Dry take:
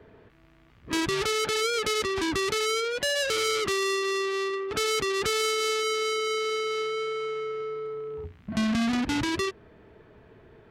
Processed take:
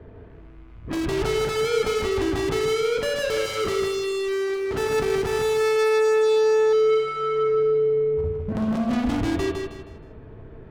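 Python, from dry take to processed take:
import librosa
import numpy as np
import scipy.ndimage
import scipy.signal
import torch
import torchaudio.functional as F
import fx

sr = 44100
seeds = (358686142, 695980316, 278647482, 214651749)

y = fx.tilt_eq(x, sr, slope=-3.0)
y = fx.hum_notches(y, sr, base_hz=60, count=7)
y = np.clip(y, -10.0 ** (-26.5 / 20.0), 10.0 ** (-26.5 / 20.0))
y = fx.echo_feedback(y, sr, ms=158, feedback_pct=33, wet_db=-4.5)
y = fx.rev_spring(y, sr, rt60_s=1.0, pass_ms=(36, 55), chirp_ms=80, drr_db=6.5)
y = fx.running_max(y, sr, window=9, at=(4.28, 6.73))
y = y * librosa.db_to_amplitude(2.5)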